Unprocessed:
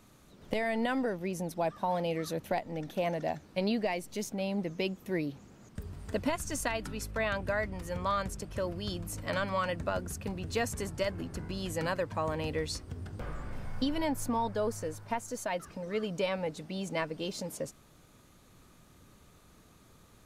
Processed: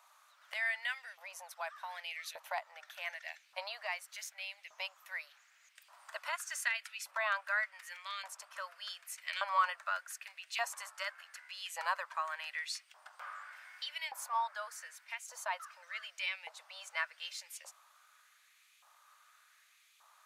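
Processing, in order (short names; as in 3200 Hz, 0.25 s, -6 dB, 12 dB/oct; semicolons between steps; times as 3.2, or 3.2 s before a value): elliptic high-pass 590 Hz, stop band 50 dB; LFO high-pass saw up 0.85 Hz 890–2600 Hz; gain -3 dB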